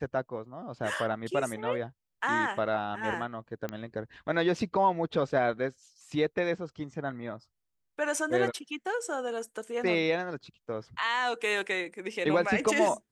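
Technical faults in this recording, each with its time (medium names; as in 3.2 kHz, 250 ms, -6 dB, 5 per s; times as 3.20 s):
3.69 s: pop -21 dBFS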